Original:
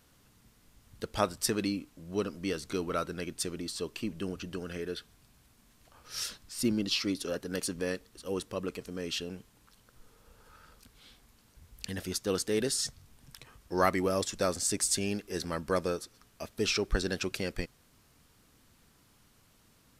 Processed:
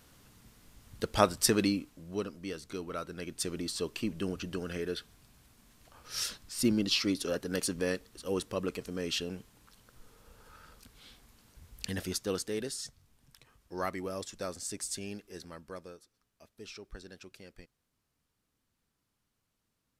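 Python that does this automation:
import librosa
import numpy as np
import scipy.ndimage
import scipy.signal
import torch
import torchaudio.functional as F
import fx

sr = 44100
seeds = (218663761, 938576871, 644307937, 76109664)

y = fx.gain(x, sr, db=fx.line((1.61, 4.0), (2.43, -6.0), (3.02, -6.0), (3.57, 1.5), (11.98, 1.5), (12.79, -8.5), (15.18, -8.5), (15.98, -17.5)))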